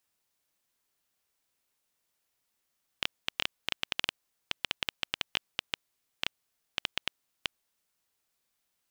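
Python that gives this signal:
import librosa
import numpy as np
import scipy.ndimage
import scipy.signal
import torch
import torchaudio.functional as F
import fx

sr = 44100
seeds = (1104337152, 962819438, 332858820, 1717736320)

y = fx.geiger_clicks(sr, seeds[0], length_s=5.12, per_s=6.3, level_db=-9.5)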